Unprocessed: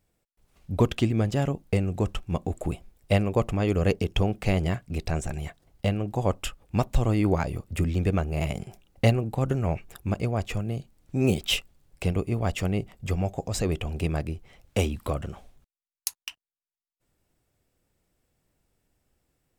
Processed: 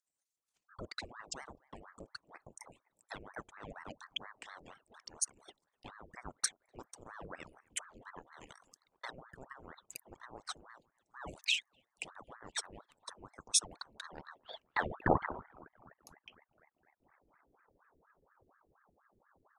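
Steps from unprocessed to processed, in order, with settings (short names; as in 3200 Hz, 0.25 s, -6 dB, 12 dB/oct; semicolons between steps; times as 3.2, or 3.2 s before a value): formant sharpening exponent 2; dynamic EQ 230 Hz, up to +6 dB, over -36 dBFS, Q 0.77; in parallel at +3 dB: compressor, threshold -32 dBFS, peak gain reduction 19.5 dB; on the sum: band-pass sweep 7000 Hz -> 220 Hz, 13.89–15.8; on a send: band-limited delay 0.253 s, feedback 67%, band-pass 650 Hz, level -23.5 dB; on the sum: ring modulator with a swept carrier 810 Hz, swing 85%, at 4.2 Hz; gain +8 dB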